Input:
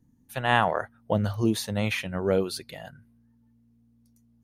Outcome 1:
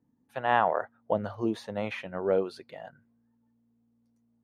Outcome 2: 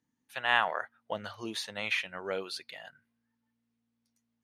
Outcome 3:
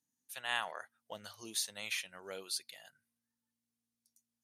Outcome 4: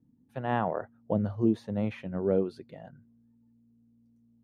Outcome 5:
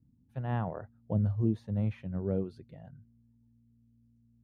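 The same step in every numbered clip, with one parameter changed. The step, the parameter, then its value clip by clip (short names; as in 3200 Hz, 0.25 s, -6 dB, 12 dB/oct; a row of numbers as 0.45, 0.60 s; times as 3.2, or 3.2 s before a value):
band-pass, frequency: 690, 2400, 7900, 270, 100 Hz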